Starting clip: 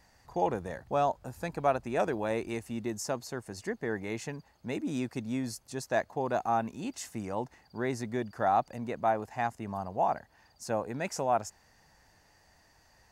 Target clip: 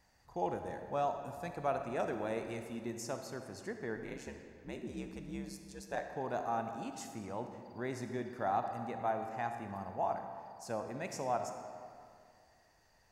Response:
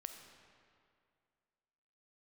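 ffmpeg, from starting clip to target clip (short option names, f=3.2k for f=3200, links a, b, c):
-filter_complex "[0:a]asplit=3[a][b][c];[a]afade=t=out:st=3.95:d=0.02[d];[b]aeval=exprs='val(0)*sin(2*PI*68*n/s)':c=same,afade=t=in:st=3.95:d=0.02,afade=t=out:st=6.03:d=0.02[e];[c]afade=t=in:st=6.03:d=0.02[f];[d][e][f]amix=inputs=3:normalize=0[g];[1:a]atrim=start_sample=2205[h];[g][h]afir=irnorm=-1:irlink=0,volume=-2.5dB"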